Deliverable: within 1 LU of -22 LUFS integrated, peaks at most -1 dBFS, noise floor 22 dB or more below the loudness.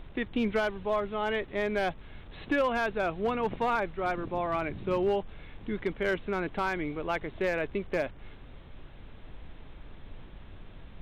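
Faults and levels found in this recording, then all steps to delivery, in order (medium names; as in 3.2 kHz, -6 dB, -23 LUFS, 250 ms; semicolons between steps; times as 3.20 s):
clipped samples 0.4%; clipping level -20.5 dBFS; noise floor -48 dBFS; noise floor target -53 dBFS; loudness -31.0 LUFS; peak level -20.5 dBFS; loudness target -22.0 LUFS
-> clip repair -20.5 dBFS; noise print and reduce 6 dB; trim +9 dB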